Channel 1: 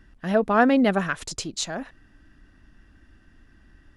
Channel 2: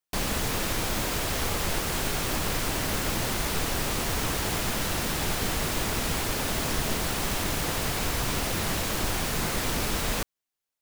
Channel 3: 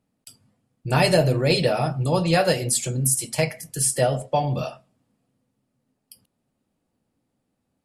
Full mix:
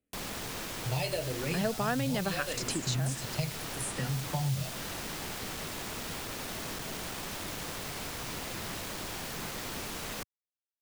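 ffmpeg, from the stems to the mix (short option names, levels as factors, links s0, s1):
-filter_complex "[0:a]adelay=1300,volume=1.33[s0];[1:a]asoftclip=type=tanh:threshold=0.0531,acrusher=bits=4:mix=0:aa=0.000001,volume=0.376[s1];[2:a]asubboost=boost=9.5:cutoff=140,asplit=2[s2][s3];[s3]afreqshift=-0.8[s4];[s2][s4]amix=inputs=2:normalize=1,volume=0.447,asplit=2[s5][s6];[s6]apad=whole_len=232387[s7];[s0][s7]sidechaincompress=threshold=0.0708:ratio=8:attack=16:release=390[s8];[s8][s1][s5]amix=inputs=3:normalize=0,acrossover=split=100|2900|6900[s9][s10][s11][s12];[s9]acompressor=threshold=0.00355:ratio=4[s13];[s10]acompressor=threshold=0.0282:ratio=4[s14];[s11]acompressor=threshold=0.0112:ratio=4[s15];[s12]acompressor=threshold=0.00708:ratio=4[s16];[s13][s14][s15][s16]amix=inputs=4:normalize=0"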